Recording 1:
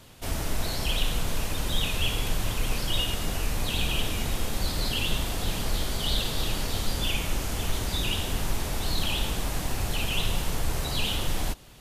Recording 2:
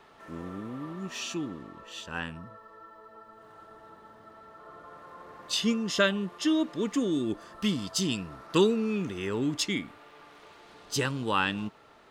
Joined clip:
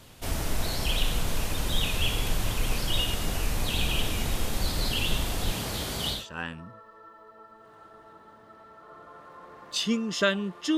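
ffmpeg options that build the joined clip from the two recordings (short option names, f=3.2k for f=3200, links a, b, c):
-filter_complex "[0:a]asettb=1/sr,asplit=3[a][b][c];[a]atrim=end=5.524[d];[b]atrim=start=5.52:end=6.26,asetpts=PTS-STARTPTS,afade=t=in:d=0.004:c=qsin,afade=t=out:st=0.736:d=0.004:c=qsin,highpass=74[e];[c]atrim=start=6.256[f];[d][e]acrossfade=d=0.004:c1=hsin:c2=qsin[g];[g][f]acrossfade=d=0.004:c1=qsin:c2=hsin,apad=whole_dur=10.77,atrim=end=10.77,atrim=end=6.26,asetpts=PTS-STARTPTS[h];[1:a]atrim=start=1.85:end=6.54,asetpts=PTS-STARTPTS[i];[h][i]acrossfade=d=0.18:c1=tri:c2=tri"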